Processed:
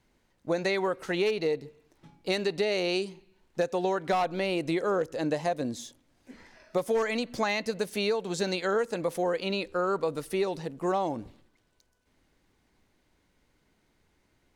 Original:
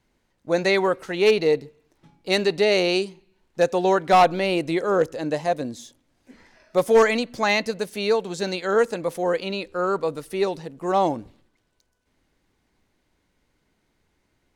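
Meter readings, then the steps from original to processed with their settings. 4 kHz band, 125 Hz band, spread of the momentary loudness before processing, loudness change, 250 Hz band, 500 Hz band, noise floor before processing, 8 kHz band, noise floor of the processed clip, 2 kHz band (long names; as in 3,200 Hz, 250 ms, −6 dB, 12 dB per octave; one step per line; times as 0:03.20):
−6.5 dB, −4.5 dB, 11 LU, −7.5 dB, −5.0 dB, −7.5 dB, −71 dBFS, −5.0 dB, −71 dBFS, −7.5 dB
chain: downward compressor 10 to 1, threshold −24 dBFS, peak gain reduction 12.5 dB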